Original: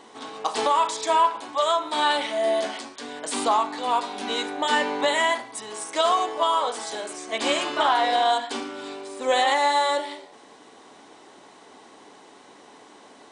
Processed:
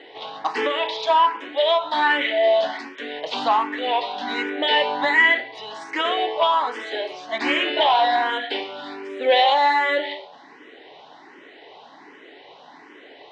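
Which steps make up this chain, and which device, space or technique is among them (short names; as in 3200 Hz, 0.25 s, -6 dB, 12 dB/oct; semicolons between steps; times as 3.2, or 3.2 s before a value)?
barber-pole phaser into a guitar amplifier (endless phaser +1.3 Hz; soft clip -15 dBFS, distortion -20 dB; speaker cabinet 89–4100 Hz, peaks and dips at 92 Hz -9 dB, 130 Hz -3 dB, 210 Hz -10 dB, 1200 Hz -7 dB, 1900 Hz +6 dB, 2900 Hz +3 dB); gain +7 dB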